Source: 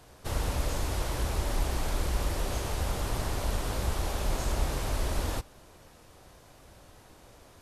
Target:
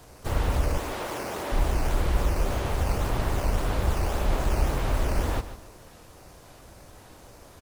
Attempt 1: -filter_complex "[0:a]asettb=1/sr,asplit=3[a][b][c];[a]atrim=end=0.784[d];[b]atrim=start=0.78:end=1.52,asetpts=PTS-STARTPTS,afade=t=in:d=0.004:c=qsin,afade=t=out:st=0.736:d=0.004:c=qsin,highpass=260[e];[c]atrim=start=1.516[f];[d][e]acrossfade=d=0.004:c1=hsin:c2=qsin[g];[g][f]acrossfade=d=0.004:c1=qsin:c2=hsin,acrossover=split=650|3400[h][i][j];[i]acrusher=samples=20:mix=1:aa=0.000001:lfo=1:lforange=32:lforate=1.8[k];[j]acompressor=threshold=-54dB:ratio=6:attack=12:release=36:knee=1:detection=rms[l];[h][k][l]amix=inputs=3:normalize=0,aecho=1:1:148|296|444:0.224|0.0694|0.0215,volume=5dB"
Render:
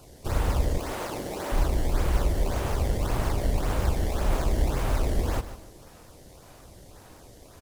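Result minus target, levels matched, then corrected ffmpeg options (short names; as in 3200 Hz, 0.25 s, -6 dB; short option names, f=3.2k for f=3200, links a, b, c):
decimation with a swept rate: distortion +11 dB
-filter_complex "[0:a]asettb=1/sr,asplit=3[a][b][c];[a]atrim=end=0.784[d];[b]atrim=start=0.78:end=1.52,asetpts=PTS-STARTPTS,afade=t=in:d=0.004:c=qsin,afade=t=out:st=0.736:d=0.004:c=qsin,highpass=260[e];[c]atrim=start=1.516[f];[d][e]acrossfade=d=0.004:c1=hsin:c2=qsin[g];[g][f]acrossfade=d=0.004:c1=qsin:c2=hsin,acrossover=split=650|3400[h][i][j];[i]acrusher=samples=7:mix=1:aa=0.000001:lfo=1:lforange=11.2:lforate=1.8[k];[j]acompressor=threshold=-54dB:ratio=6:attack=12:release=36:knee=1:detection=rms[l];[h][k][l]amix=inputs=3:normalize=0,aecho=1:1:148|296|444:0.224|0.0694|0.0215,volume=5dB"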